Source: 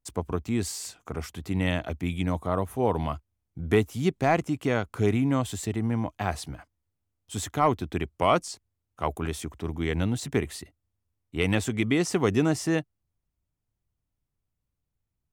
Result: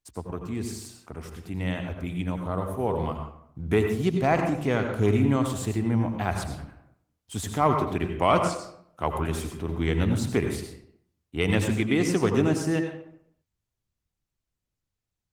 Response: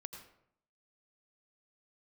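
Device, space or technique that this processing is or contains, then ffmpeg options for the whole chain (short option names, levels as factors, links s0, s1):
speakerphone in a meeting room: -filter_complex "[1:a]atrim=start_sample=2205[s0];[0:a][s0]afir=irnorm=-1:irlink=0,dynaudnorm=f=510:g=13:m=2" -ar 48000 -c:a libopus -b:a 20k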